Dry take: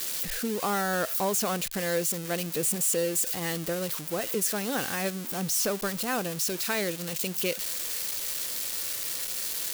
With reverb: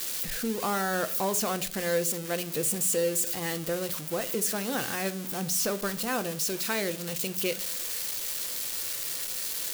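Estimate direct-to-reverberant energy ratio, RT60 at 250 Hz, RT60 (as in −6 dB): 11.5 dB, 0.75 s, 0.55 s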